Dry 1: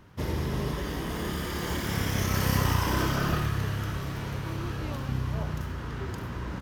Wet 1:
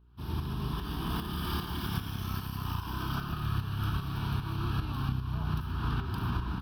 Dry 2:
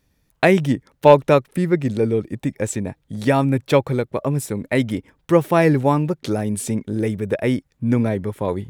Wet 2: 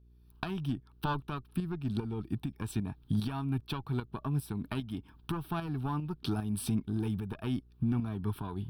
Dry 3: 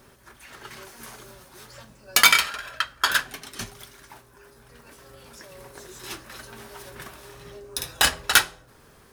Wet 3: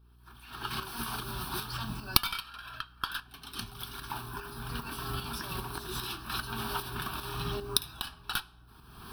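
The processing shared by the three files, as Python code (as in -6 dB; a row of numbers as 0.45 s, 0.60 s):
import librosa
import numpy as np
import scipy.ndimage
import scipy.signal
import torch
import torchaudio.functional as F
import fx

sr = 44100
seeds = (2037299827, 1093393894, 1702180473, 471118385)

y = fx.diode_clip(x, sr, knee_db=-12.5)
y = fx.recorder_agc(y, sr, target_db=-7.5, rise_db_per_s=37.0, max_gain_db=30)
y = fx.fixed_phaser(y, sr, hz=2000.0, stages=6)
y = fx.tremolo_shape(y, sr, shape='saw_up', hz=2.5, depth_pct=55)
y = fx.dmg_buzz(y, sr, base_hz=60.0, harmonics=7, level_db=-47.0, tilt_db=-9, odd_only=False)
y = y * 10.0 ** (-12.5 / 20.0)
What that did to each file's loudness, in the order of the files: -4.0 LU, -16.0 LU, -14.5 LU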